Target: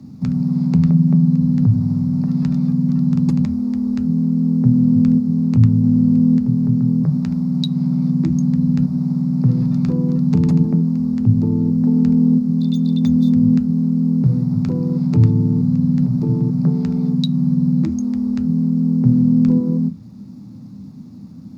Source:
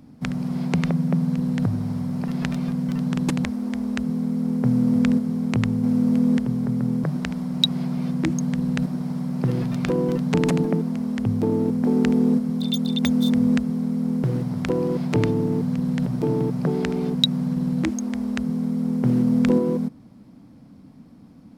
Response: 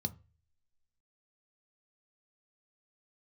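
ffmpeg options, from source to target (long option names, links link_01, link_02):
-filter_complex "[0:a]acrossover=split=140[link_01][link_02];[link_02]acompressor=threshold=-41dB:ratio=1.5[link_03];[link_01][link_03]amix=inputs=2:normalize=0,acrusher=bits=9:mix=0:aa=0.000001,asplit=2[link_04][link_05];[1:a]atrim=start_sample=2205,asetrate=48510,aresample=44100[link_06];[link_05][link_06]afir=irnorm=-1:irlink=0,volume=8dB[link_07];[link_04][link_07]amix=inputs=2:normalize=0,volume=-7.5dB"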